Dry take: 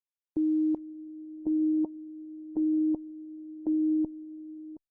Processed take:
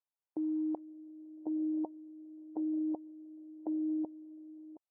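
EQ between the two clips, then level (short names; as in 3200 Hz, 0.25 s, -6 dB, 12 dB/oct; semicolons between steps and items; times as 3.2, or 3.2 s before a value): band-pass 770 Hz, Q 2; +5.0 dB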